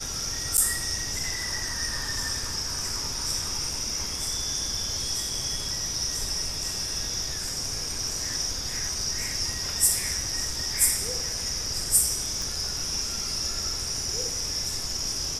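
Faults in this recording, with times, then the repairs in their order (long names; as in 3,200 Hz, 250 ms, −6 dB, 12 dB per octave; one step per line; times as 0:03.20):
0:00.57–0:00.58: drop-out 9.1 ms
0:12.42: click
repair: click removal
repair the gap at 0:00.57, 9.1 ms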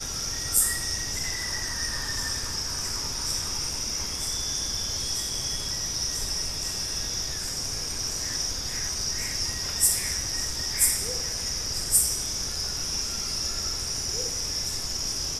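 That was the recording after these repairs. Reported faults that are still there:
none of them is left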